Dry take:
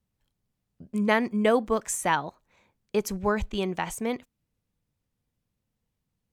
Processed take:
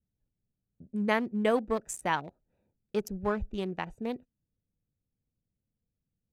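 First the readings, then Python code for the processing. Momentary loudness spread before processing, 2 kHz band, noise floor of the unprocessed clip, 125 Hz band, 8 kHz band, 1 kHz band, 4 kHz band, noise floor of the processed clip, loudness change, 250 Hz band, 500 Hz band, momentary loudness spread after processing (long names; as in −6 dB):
9 LU, −5.0 dB, −82 dBFS, −4.5 dB, −9.5 dB, −5.0 dB, −6.0 dB, below −85 dBFS, −4.5 dB, −4.5 dB, −4.5 dB, 10 LU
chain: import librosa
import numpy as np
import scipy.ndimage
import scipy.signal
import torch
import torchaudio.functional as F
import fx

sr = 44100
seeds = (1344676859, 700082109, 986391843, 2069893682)

y = fx.wiener(x, sr, points=41)
y = y * librosa.db_to_amplitude(-4.0)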